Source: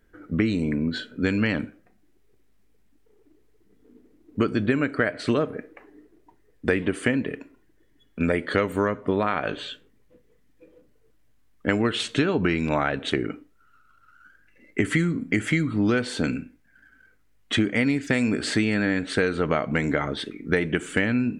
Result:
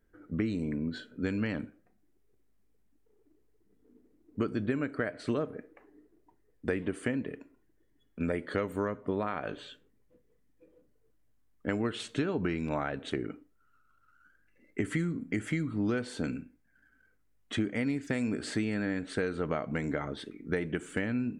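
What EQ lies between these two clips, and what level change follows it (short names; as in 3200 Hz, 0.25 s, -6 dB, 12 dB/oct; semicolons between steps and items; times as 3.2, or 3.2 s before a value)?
bell 3000 Hz -5 dB 2.1 oct; -8.0 dB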